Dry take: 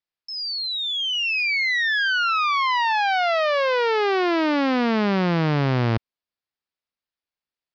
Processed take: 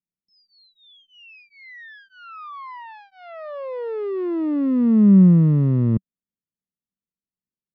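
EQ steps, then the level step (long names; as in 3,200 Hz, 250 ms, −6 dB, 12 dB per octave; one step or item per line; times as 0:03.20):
moving average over 57 samples
high-frequency loss of the air 70 metres
parametric band 190 Hz +14 dB 0.68 octaves
0.0 dB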